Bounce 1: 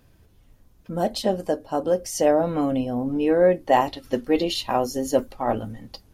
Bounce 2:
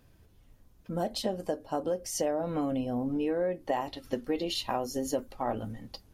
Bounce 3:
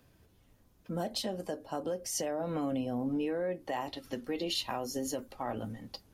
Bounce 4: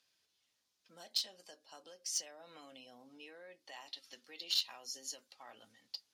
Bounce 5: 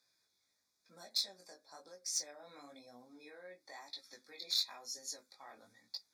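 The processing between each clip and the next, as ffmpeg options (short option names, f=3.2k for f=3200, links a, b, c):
-af "acompressor=threshold=-23dB:ratio=5,volume=-4dB"
-filter_complex "[0:a]lowshelf=f=62:g=-11.5,acrossover=split=190|1300[a][b][c];[b]alimiter=level_in=3.5dB:limit=-24dB:level=0:latency=1:release=83,volume=-3.5dB[d];[a][d][c]amix=inputs=3:normalize=0"
-filter_complex "[0:a]bandpass=f=4.7k:t=q:w=1.5:csg=0,asplit=2[a][b];[b]acrusher=bits=4:mix=0:aa=0.5,volume=-9.5dB[c];[a][c]amix=inputs=2:normalize=0,volume=1dB"
-af "flanger=delay=16.5:depth=5.8:speed=1,asuperstop=centerf=2900:order=20:qfactor=3.4,volume=3.5dB"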